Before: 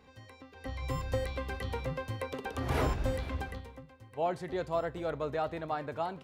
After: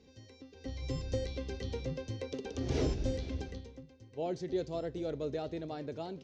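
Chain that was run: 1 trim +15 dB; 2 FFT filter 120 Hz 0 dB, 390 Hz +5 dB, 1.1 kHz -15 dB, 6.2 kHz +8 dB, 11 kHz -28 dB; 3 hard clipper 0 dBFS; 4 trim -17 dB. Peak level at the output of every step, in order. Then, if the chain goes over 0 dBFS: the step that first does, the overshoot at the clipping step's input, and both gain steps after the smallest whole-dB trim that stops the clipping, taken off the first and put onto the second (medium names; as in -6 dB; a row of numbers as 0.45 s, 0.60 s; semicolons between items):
-3.5 dBFS, -3.0 dBFS, -3.0 dBFS, -20.0 dBFS; nothing clips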